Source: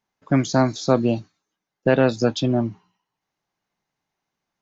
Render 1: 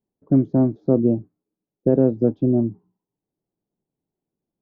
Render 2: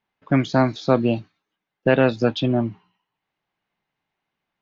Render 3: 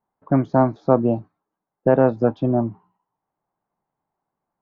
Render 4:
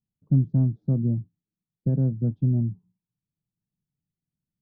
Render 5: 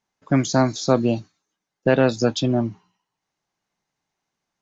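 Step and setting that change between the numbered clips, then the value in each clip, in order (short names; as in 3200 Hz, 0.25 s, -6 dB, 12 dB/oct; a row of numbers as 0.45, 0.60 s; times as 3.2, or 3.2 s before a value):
synth low-pass, frequency: 380, 3000, 960, 150, 8000 Hz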